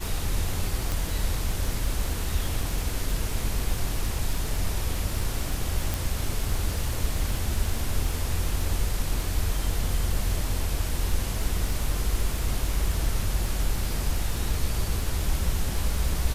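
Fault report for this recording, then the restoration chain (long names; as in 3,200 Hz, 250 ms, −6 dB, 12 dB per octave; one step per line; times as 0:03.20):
surface crackle 39 per second −30 dBFS
0:00.92: click
0:05.94: click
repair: click removal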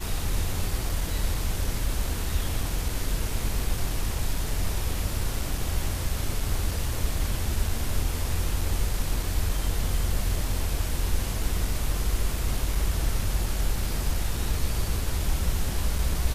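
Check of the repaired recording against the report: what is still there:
none of them is left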